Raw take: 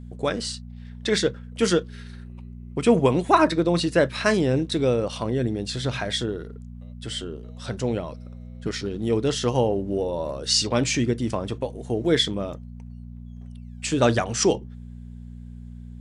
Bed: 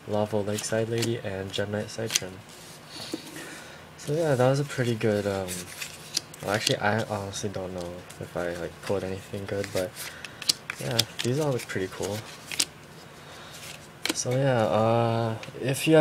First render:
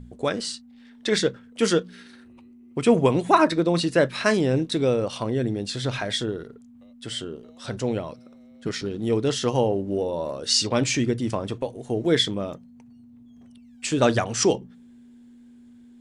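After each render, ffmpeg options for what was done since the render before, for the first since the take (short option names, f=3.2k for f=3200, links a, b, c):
-af "bandreject=f=60:t=h:w=4,bandreject=f=120:t=h:w=4,bandreject=f=180:t=h:w=4"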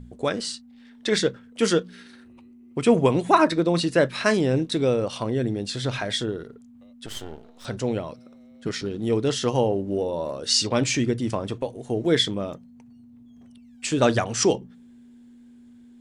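-filter_complex "[0:a]asettb=1/sr,asplit=3[a][b][c];[a]atrim=end=7.064[d];[b]atrim=start=7.06:end=7.65,asetpts=PTS-STARTPTS,afade=t=in:d=0.004:c=qsin,afade=t=out:st=0.586:d=0.004:c=qsin,aeval=exprs='max(val(0),0)':c=same[e];[c]atrim=start=7.646[f];[d][e]acrossfade=d=0.004:c1=hsin:c2=qsin[g];[g][f]acrossfade=d=0.004:c1=qsin:c2=hsin"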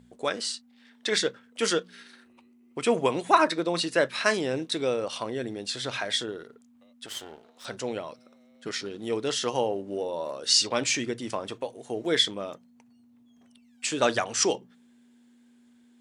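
-af "highpass=f=680:p=1"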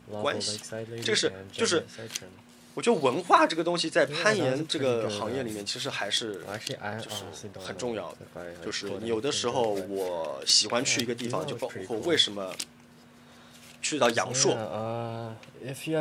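-filter_complex "[1:a]volume=-10dB[a];[0:a][a]amix=inputs=2:normalize=0"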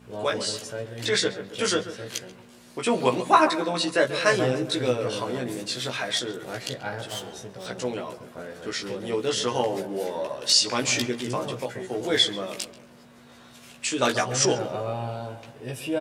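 -filter_complex "[0:a]asplit=2[a][b];[b]adelay=16,volume=-2.5dB[c];[a][c]amix=inputs=2:normalize=0,asplit=2[d][e];[e]adelay=136,lowpass=f=1.7k:p=1,volume=-12dB,asplit=2[f][g];[g]adelay=136,lowpass=f=1.7k:p=1,volume=0.53,asplit=2[h][i];[i]adelay=136,lowpass=f=1.7k:p=1,volume=0.53,asplit=2[j][k];[k]adelay=136,lowpass=f=1.7k:p=1,volume=0.53,asplit=2[l][m];[m]adelay=136,lowpass=f=1.7k:p=1,volume=0.53,asplit=2[n][o];[o]adelay=136,lowpass=f=1.7k:p=1,volume=0.53[p];[d][f][h][j][l][n][p]amix=inputs=7:normalize=0"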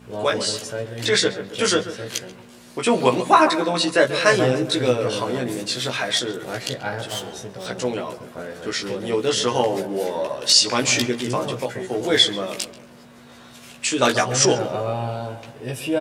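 -af "volume=5dB,alimiter=limit=-2dB:level=0:latency=1"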